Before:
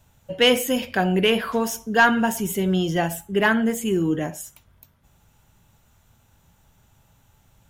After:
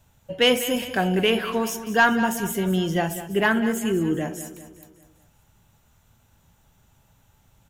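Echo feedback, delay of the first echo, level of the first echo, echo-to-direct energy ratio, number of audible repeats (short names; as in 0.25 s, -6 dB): 50%, 0.198 s, -13.0 dB, -11.5 dB, 4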